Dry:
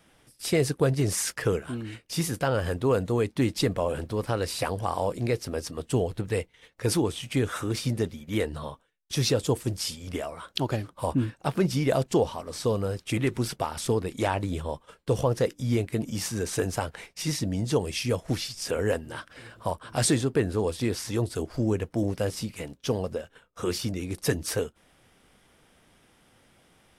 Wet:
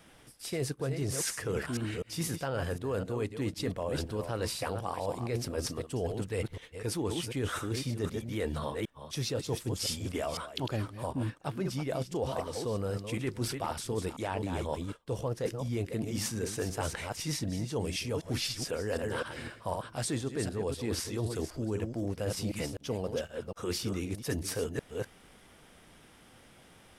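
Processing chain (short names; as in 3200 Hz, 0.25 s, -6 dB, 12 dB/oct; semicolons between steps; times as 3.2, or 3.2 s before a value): reverse delay 0.253 s, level -9 dB; reverse; compressor 10:1, threshold -33 dBFS, peak gain reduction 15.5 dB; reverse; gain +3 dB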